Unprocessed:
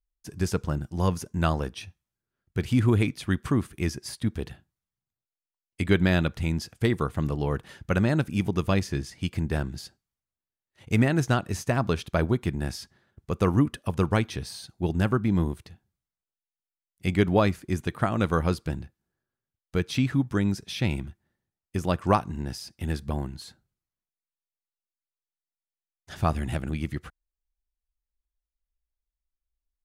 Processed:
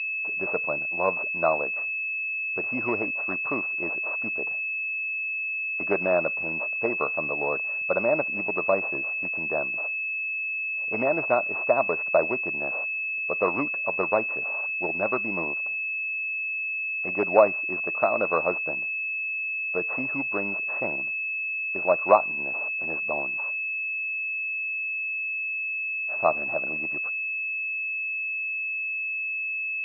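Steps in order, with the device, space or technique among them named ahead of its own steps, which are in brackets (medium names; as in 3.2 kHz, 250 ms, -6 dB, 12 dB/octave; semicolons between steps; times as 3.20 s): toy sound module (decimation joined by straight lines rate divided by 4×; class-D stage that switches slowly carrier 2.6 kHz; cabinet simulation 530–4300 Hz, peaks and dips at 610 Hz +10 dB, 1.1 kHz +4 dB, 1.7 kHz -5 dB, 3.3 kHz -7 dB); trim +3.5 dB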